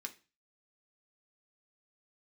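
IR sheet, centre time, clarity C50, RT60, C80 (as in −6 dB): 6 ms, 16.5 dB, 0.30 s, 22.0 dB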